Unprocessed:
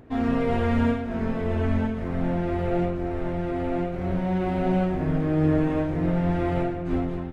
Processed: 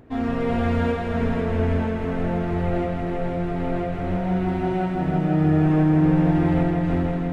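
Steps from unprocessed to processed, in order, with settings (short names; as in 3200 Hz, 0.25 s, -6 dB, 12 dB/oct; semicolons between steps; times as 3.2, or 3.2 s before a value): 4.17–5.65 notch comb 530 Hz; multi-head echo 0.162 s, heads all three, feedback 55%, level -8 dB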